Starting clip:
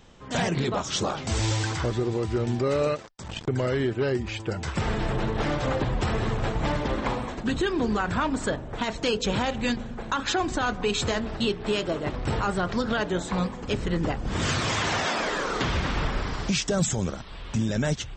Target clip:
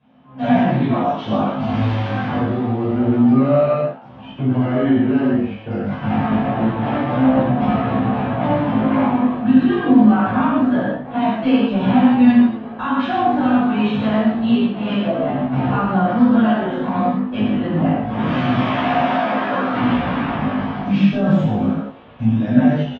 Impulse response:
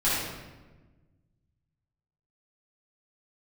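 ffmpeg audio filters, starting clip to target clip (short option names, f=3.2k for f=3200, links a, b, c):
-filter_complex "[0:a]atempo=0.79,highpass=140,equalizer=f=140:t=q:w=4:g=9,equalizer=f=230:t=q:w=4:g=5,equalizer=f=430:t=q:w=4:g=-7,equalizer=f=720:t=q:w=4:g=9,equalizer=f=2k:t=q:w=4:g=-3,lowpass=f=2.9k:w=0.5412,lowpass=f=2.9k:w=1.3066,asplit=7[a][b][c][d][e][f][g];[b]adelay=126,afreqshift=94,volume=-16dB[h];[c]adelay=252,afreqshift=188,volume=-20.3dB[i];[d]adelay=378,afreqshift=282,volume=-24.6dB[j];[e]adelay=504,afreqshift=376,volume=-28.9dB[k];[f]adelay=630,afreqshift=470,volume=-33.2dB[l];[g]adelay=756,afreqshift=564,volume=-37.5dB[m];[a][h][i][j][k][l][m]amix=inputs=7:normalize=0,asplit=2[n][o];[o]acompressor=threshold=-32dB:ratio=6,volume=0dB[p];[n][p]amix=inputs=2:normalize=0,agate=range=-10dB:threshold=-27dB:ratio=16:detection=peak,equalizer=f=260:w=4.5:g=13[q];[1:a]atrim=start_sample=2205,afade=t=out:st=0.18:d=0.01,atrim=end_sample=8379,asetrate=29547,aresample=44100[r];[q][r]afir=irnorm=-1:irlink=0,flanger=delay=15:depth=4.9:speed=0.26,volume=-10dB"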